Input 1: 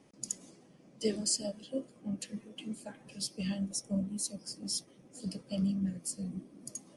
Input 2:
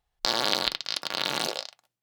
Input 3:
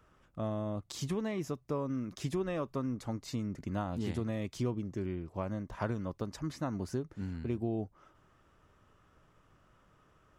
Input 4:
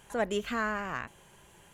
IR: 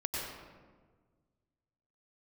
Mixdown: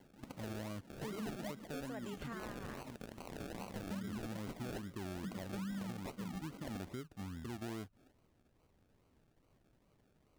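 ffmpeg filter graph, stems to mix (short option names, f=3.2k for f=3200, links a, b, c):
-filter_complex "[0:a]volume=-3dB[a];[1:a]alimiter=limit=-15.5dB:level=0:latency=1:release=13,lowpass=f=2.6k:t=q:w=5.3,adelay=2150,volume=-1dB[b];[2:a]volume=-7dB[c];[3:a]adelay=1750,volume=-11dB[d];[a][b][c]amix=inputs=3:normalize=0,acrusher=samples=35:mix=1:aa=0.000001:lfo=1:lforange=21:lforate=2.4,acompressor=threshold=-34dB:ratio=6,volume=0dB[e];[d][e]amix=inputs=2:normalize=0,equalizer=f=240:t=o:w=0.77:g=2.5,alimiter=level_in=12dB:limit=-24dB:level=0:latency=1:release=88,volume=-12dB"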